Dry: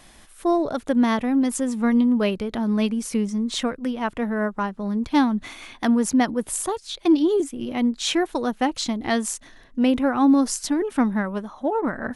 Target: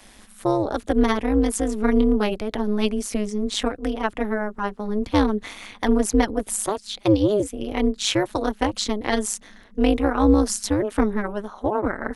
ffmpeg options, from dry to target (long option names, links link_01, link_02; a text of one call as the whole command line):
ffmpeg -i in.wav -filter_complex "[0:a]acrossover=split=330|3000[link_01][link_02][link_03];[link_02]acompressor=threshold=-21dB:ratio=6[link_04];[link_01][link_04][link_03]amix=inputs=3:normalize=0,tremolo=f=210:d=0.974,equalizer=frequency=160:width_type=o:width=0.36:gain=-11.5,volume=5.5dB" out.wav